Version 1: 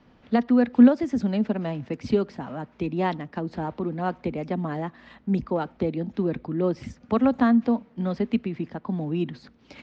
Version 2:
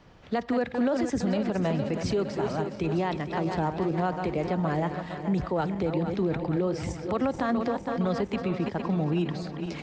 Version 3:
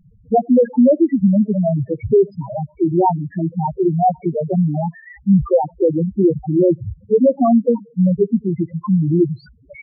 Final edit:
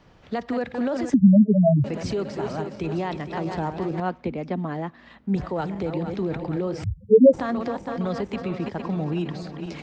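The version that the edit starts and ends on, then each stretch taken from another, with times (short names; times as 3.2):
2
1.14–1.84 from 3
4–5.36 from 1
6.84–7.33 from 3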